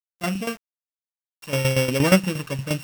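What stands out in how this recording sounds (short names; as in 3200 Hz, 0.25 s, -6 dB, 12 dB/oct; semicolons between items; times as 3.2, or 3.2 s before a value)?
a buzz of ramps at a fixed pitch in blocks of 16 samples; tremolo saw down 8.5 Hz, depth 75%; a quantiser's noise floor 8-bit, dither none; AAC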